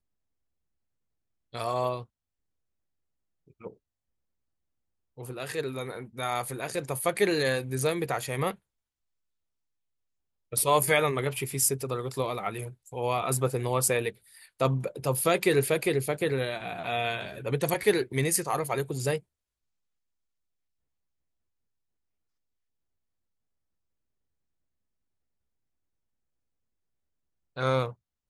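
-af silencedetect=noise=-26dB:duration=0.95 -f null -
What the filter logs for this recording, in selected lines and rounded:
silence_start: 0.00
silence_end: 1.55 | silence_duration: 1.55
silence_start: 1.97
silence_end: 5.39 | silence_duration: 3.42
silence_start: 8.51
silence_end: 10.53 | silence_duration: 2.02
silence_start: 19.16
silence_end: 27.58 | silence_duration: 8.41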